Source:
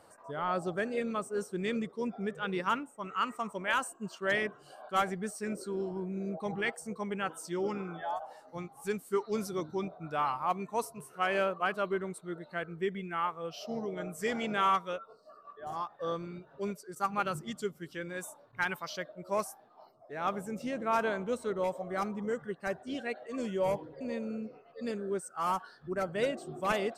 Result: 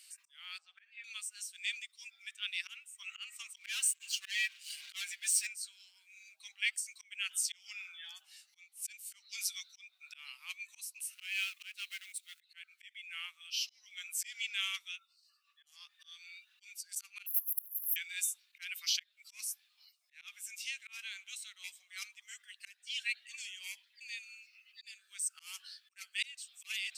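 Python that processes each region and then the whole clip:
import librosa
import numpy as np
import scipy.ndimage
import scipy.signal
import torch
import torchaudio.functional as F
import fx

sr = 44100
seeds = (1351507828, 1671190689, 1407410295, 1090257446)

y = fx.chain(x, sr, fx.lowpass(hz=1500.0, slope=12),
    fx.doubler(ms=12.0, db=-6.5),
    fx.room_flutter(wall_m=11.6, rt60_s=0.24), at=(0.58, 1.04))
y = fx.chain(y, sr, fx.leveller(passes=2),
    fx.comb(ms=6.3, depth=0.76), at=(3.56, 5.47))
y = fx.chain(y, sr, fx.law_mismatch(coded='A'),
    fx.highpass(hz=1300.0, slope=12), at=(11.14, 12.41))
y = fx.chain(y, sr, fx.leveller(passes=3),
    fx.brickwall_bandstop(low_hz=1100.0, high_hz=11000.0),
    fx.spectral_comp(ratio=10.0), at=(17.26, 17.96))
y = fx.auto_swell(y, sr, attack_ms=307.0)
y = fx.rider(y, sr, range_db=3, speed_s=0.5)
y = scipy.signal.sosfilt(scipy.signal.cheby1(4, 1.0, 2400.0, 'highpass', fs=sr, output='sos'), y)
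y = y * 10.0 ** (9.5 / 20.0)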